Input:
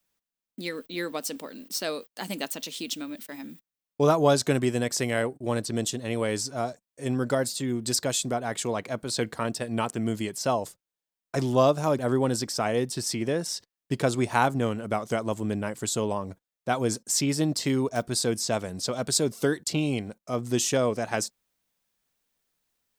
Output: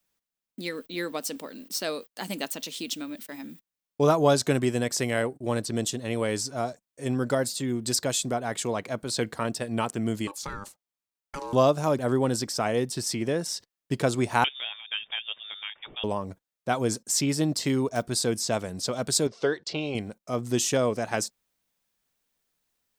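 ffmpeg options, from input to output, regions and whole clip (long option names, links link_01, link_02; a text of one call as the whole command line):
ffmpeg -i in.wav -filter_complex "[0:a]asettb=1/sr,asplit=3[link_01][link_02][link_03];[link_01]atrim=end=10.274[link_04];[link_02]atrim=start=10.27:end=11.53,asetpts=PTS-STARTPTS,afade=type=in:duration=0.004:curve=qsin,afade=type=out:start_time=1.256:duration=0.004:curve=qsin,aeval=exprs='val(0)*sin(2*PI*700*n/s)':channel_layout=same,acompressor=threshold=-31dB:ratio=6:attack=3.2:release=140:knee=1:detection=peak[link_05];[link_03]atrim=start=11.526[link_06];[link_04][link_05]acrossfade=duration=0.004:curve1=hsin:curve2=qsin[link_07];[link_07][link_06]acrossfade=duration=0.004:curve1=qsin:curve2=hsin,asettb=1/sr,asplit=3[link_08][link_09][link_10];[link_08]atrim=end=14.444[link_11];[link_09]atrim=start=14.44:end=16.04,asetpts=PTS-STARTPTS,afade=type=in:duration=0.004:curve=qsin,afade=type=out:start_time=1.596:duration=0.004:curve=qsin,highpass=frequency=360:poles=1,lowshelf=frequency=490:gain=-10.5,lowpass=frequency=3200:width_type=q:width=0.5098,lowpass=frequency=3200:width_type=q:width=0.6013,lowpass=frequency=3200:width_type=q:width=0.9,lowpass=frequency=3200:width_type=q:width=2.563,afreqshift=-3800[link_12];[link_10]atrim=start=16.036[link_13];[link_11][link_12]acrossfade=duration=0.004:curve1=hsin:curve2=qsin[link_14];[link_14][link_13]acrossfade=duration=0.004:curve1=qsin:curve2=hsin,asettb=1/sr,asplit=3[link_15][link_16][link_17];[link_15]atrim=end=19.274[link_18];[link_16]atrim=start=19.27:end=19.95,asetpts=PTS-STARTPTS,afade=type=in:duration=0.004:curve=qsin,afade=type=out:start_time=0.676:duration=0.004:curve=qsin,lowpass=frequency=5300:width=0.5412,lowpass=frequency=5300:width=1.3066,lowshelf=frequency=340:width_type=q:width=1.5:gain=-7[link_19];[link_17]atrim=start=19.946[link_20];[link_18][link_19]acrossfade=duration=0.004:curve1=hsin:curve2=qsin[link_21];[link_21][link_20]acrossfade=duration=0.004:curve1=qsin:curve2=hsin" out.wav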